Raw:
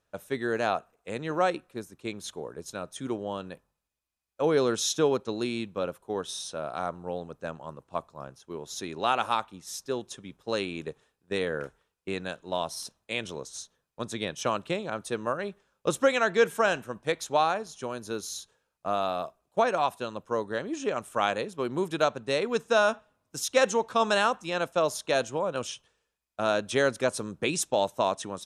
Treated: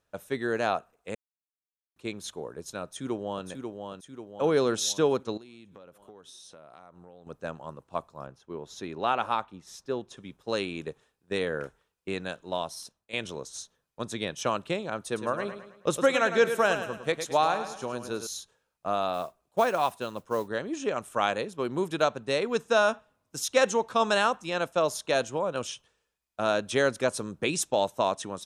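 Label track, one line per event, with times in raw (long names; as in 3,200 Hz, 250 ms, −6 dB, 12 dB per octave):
1.150000	1.960000	silence
2.830000	3.460000	delay throw 540 ms, feedback 55%, level −5.5 dB
5.370000	7.270000	downward compressor 10 to 1, threshold −46 dBFS
8.260000	10.170000	low-pass filter 2,400 Hz 6 dB per octave
12.470000	13.130000	fade out linear, to −12 dB
15.050000	18.270000	repeating echo 107 ms, feedback 43%, level −9.5 dB
19.130000	20.480000	noise that follows the level under the signal 25 dB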